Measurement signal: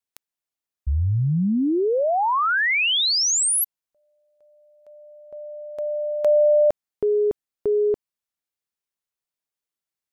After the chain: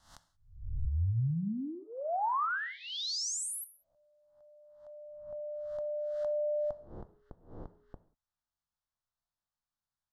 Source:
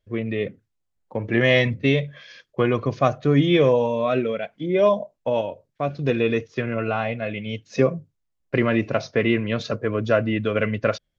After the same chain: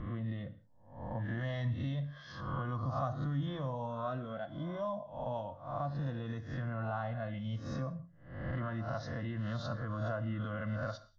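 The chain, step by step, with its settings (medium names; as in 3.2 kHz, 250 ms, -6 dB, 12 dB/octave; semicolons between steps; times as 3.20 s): reverse spectral sustain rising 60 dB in 0.52 s; low-pass 4.5 kHz 12 dB/octave; bass shelf 88 Hz +11.5 dB; in parallel at +2.5 dB: peak limiter -13 dBFS; on the sum: compression 2.5:1, threshold -28 dBFS; static phaser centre 1 kHz, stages 4; gated-style reverb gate 210 ms falling, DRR 11.5 dB; trim -7.5 dB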